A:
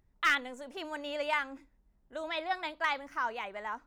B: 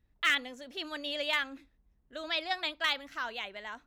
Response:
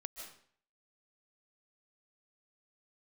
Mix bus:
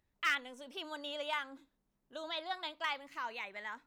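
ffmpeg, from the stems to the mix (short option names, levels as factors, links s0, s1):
-filter_complex "[0:a]volume=0.631[s0];[1:a]highpass=110,lowshelf=f=330:g=7.5,acompressor=threshold=0.0126:ratio=6,volume=0.631[s1];[s0][s1]amix=inputs=2:normalize=0,lowshelf=f=410:g=-11"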